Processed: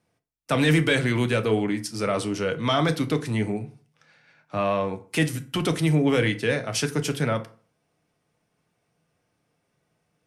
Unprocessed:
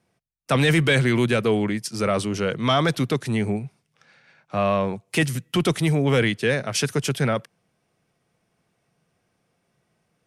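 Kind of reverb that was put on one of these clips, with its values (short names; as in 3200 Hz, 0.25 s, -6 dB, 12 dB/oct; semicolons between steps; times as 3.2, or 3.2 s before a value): FDN reverb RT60 0.42 s, low-frequency decay 1×, high-frequency decay 0.65×, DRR 7 dB; gain -3 dB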